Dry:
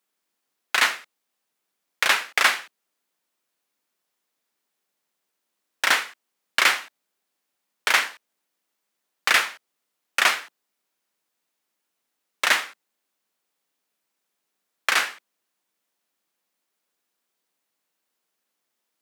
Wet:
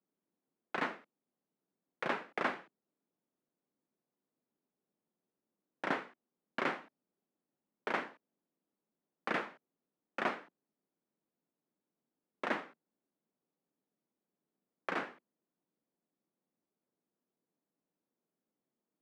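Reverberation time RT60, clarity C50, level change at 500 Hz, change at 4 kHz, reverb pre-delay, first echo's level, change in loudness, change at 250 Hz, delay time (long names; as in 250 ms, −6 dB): no reverb audible, no reverb audible, −4.0 dB, −25.5 dB, no reverb audible, no echo audible, −17.0 dB, +2.5 dB, no echo audible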